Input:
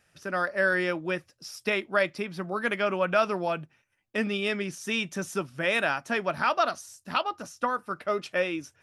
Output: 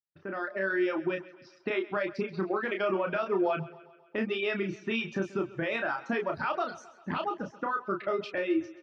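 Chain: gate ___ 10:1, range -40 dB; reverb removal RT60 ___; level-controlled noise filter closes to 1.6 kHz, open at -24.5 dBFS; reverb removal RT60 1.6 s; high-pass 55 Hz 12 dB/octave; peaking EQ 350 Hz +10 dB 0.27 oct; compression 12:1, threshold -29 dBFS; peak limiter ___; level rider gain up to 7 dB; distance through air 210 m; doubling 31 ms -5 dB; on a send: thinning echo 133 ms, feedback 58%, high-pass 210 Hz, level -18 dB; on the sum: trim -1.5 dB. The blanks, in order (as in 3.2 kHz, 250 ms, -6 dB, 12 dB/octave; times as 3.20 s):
-59 dBFS, 0.62 s, -26 dBFS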